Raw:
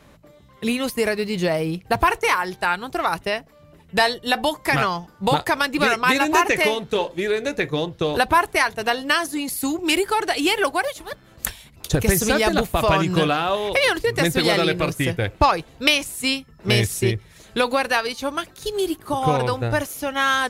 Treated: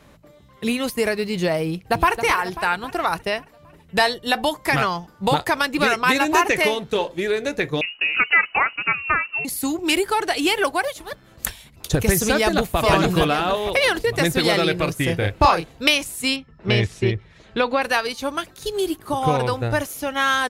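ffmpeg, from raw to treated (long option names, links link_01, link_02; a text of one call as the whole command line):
ffmpeg -i in.wav -filter_complex "[0:a]asplit=2[link_01][link_02];[link_02]afade=type=in:start_time=1.68:duration=0.01,afade=type=out:start_time=2.2:duration=0.01,aecho=0:1:270|540|810|1080|1350|1620:0.316228|0.173925|0.0956589|0.0526124|0.0289368|0.0159152[link_03];[link_01][link_03]amix=inputs=2:normalize=0,asettb=1/sr,asplit=3[link_04][link_05][link_06];[link_04]atrim=end=7.814[link_07];[link_05]atrim=start=7.81:end=9.45,asetpts=PTS-STARTPTS,afade=type=in:duration=0.004:curve=qsin,afade=type=out:start_time=1.636:duration=0.004:curve=qsin,lowpass=frequency=2600:width_type=q:width=0.5098,lowpass=frequency=2600:width_type=q:width=0.6013,lowpass=frequency=2600:width_type=q:width=0.9,lowpass=frequency=2600:width_type=q:width=2.563,afreqshift=-3000[link_08];[link_06]atrim=start=9.446[link_09];[link_07][link_08]acrossfade=duration=0.004:curve1=hsin:curve2=qsin[link_10];[link_10][link_09]acrossfade=duration=0.004:curve1=qsin:curve2=hsin,asplit=2[link_11][link_12];[link_12]afade=type=in:start_time=12.37:duration=0.01,afade=type=out:start_time=12.78:duration=0.01,aecho=0:1:460|920|1380|1840|2300:0.749894|0.262463|0.091862|0.0321517|0.0112531[link_13];[link_11][link_13]amix=inputs=2:normalize=0,asettb=1/sr,asplit=3[link_14][link_15][link_16];[link_14]atrim=end=15.054[link_17];[link_15]atrim=start=15.05:end=15.72,asetpts=PTS-STARTPTS,afade=type=in:duration=0.004:curve=qsin,afade=type=out:start_time=0.666:duration=0.004:curve=qsin,asplit=2[link_18][link_19];[link_19]adelay=30,volume=-3.5dB[link_20];[link_18][link_20]amix=inputs=2:normalize=0,atrim=end_sample=29547[link_21];[link_16]atrim=start=15.716[link_22];[link_17][link_21]acrossfade=duration=0.004:curve1=hsin:curve2=qsin[link_23];[link_23][link_22]acrossfade=duration=0.004:curve1=qsin:curve2=hsin,asettb=1/sr,asplit=3[link_24][link_25][link_26];[link_24]atrim=end=16.364[link_27];[link_25]atrim=start=16.36:end=17.82,asetpts=PTS-STARTPTS,afade=type=in:duration=0.004:curve=qsin,afade=type=out:start_time=1.456:duration=0.004:curve=qsin,lowpass=3500[link_28];[link_26]atrim=start=17.816[link_29];[link_27][link_28]acrossfade=duration=0.004:curve1=hsin:curve2=qsin[link_30];[link_30][link_29]acrossfade=duration=0.004:curve1=qsin:curve2=hsin" out.wav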